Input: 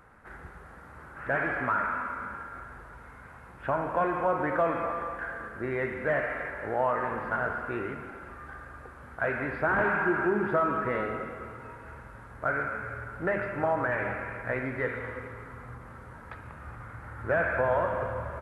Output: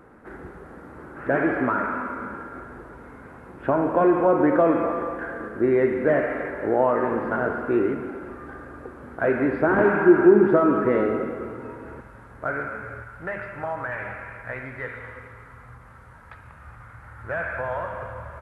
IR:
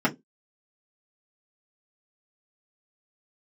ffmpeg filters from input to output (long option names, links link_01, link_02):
-af "asetnsamples=nb_out_samples=441:pad=0,asendcmd='12.01 equalizer g 4.5;13.02 equalizer g -7',equalizer=frequency=320:width_type=o:width=1.8:gain=15"